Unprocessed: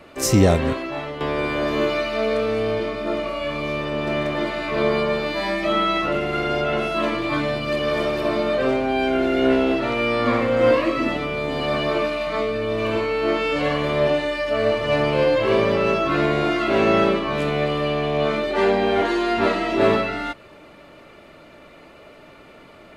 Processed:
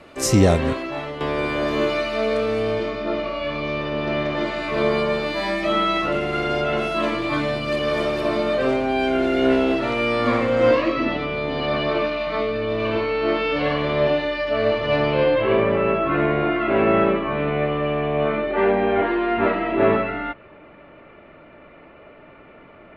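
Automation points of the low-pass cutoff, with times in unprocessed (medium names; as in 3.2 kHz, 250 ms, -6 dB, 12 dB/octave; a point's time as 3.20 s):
low-pass 24 dB/octave
2.64 s 12 kHz
3.09 s 5.4 kHz
4.24 s 5.4 kHz
4.76 s 12 kHz
10.30 s 12 kHz
11.04 s 4.8 kHz
15.02 s 4.8 kHz
15.67 s 2.6 kHz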